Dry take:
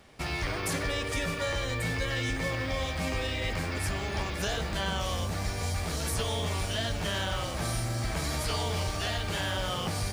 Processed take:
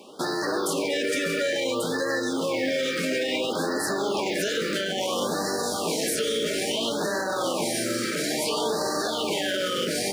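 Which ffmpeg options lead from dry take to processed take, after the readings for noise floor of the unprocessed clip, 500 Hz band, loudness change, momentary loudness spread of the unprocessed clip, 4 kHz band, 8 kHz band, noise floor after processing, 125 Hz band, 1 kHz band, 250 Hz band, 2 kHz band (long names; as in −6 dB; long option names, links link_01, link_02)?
−34 dBFS, +9.5 dB, +5.0 dB, 2 LU, +5.0 dB, +6.5 dB, −29 dBFS, −9.5 dB, +4.5 dB, +8.0 dB, +3.5 dB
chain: -af "highpass=frequency=210:width=0.5412,highpass=frequency=210:width=1.3066,equalizer=frequency=400:width=1.1:gain=6,bandreject=frequency=690:width=12,alimiter=level_in=2dB:limit=-24dB:level=0:latency=1:release=23,volume=-2dB,afftfilt=real='re*(1-between(b*sr/1024,830*pow(2800/830,0.5+0.5*sin(2*PI*0.59*pts/sr))/1.41,830*pow(2800/830,0.5+0.5*sin(2*PI*0.59*pts/sr))*1.41))':imag='im*(1-between(b*sr/1024,830*pow(2800/830,0.5+0.5*sin(2*PI*0.59*pts/sr))/1.41,830*pow(2800/830,0.5+0.5*sin(2*PI*0.59*pts/sr))*1.41))':win_size=1024:overlap=0.75,volume=9dB"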